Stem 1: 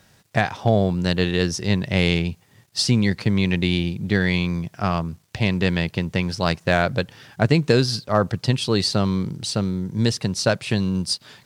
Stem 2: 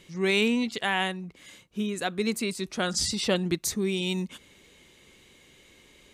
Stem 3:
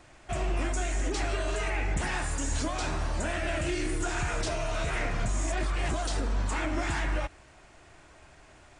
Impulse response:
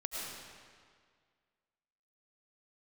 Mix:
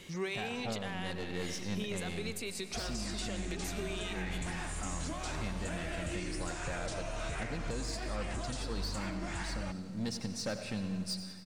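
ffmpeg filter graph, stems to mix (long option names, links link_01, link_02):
-filter_complex "[0:a]bandreject=frequency=3100:width=5.2,aecho=1:1:3.8:0.4,asoftclip=type=tanh:threshold=-17.5dB,volume=-15dB,asplit=3[link_01][link_02][link_03];[link_02]volume=-8.5dB[link_04];[link_03]volume=-10.5dB[link_05];[1:a]acrossover=split=360[link_06][link_07];[link_06]acompressor=threshold=-43dB:ratio=6[link_08];[link_08][link_07]amix=inputs=2:normalize=0,alimiter=level_in=1dB:limit=-24dB:level=0:latency=1,volume=-1dB,acompressor=threshold=-39dB:ratio=2.5,volume=1.5dB,asplit=2[link_09][link_10];[link_10]volume=-9.5dB[link_11];[2:a]highshelf=frequency=8600:gain=7,adelay=2450,volume=-5.5dB,asplit=2[link_12][link_13];[link_13]volume=-19.5dB[link_14];[3:a]atrim=start_sample=2205[link_15];[link_04][link_11]amix=inputs=2:normalize=0[link_16];[link_16][link_15]afir=irnorm=-1:irlink=0[link_17];[link_05][link_14]amix=inputs=2:normalize=0,aecho=0:1:91|182|273|364|455|546|637|728:1|0.54|0.292|0.157|0.085|0.0459|0.0248|0.0134[link_18];[link_01][link_09][link_12][link_17][link_18]amix=inputs=5:normalize=0,alimiter=level_in=3.5dB:limit=-24dB:level=0:latency=1:release=466,volume=-3.5dB"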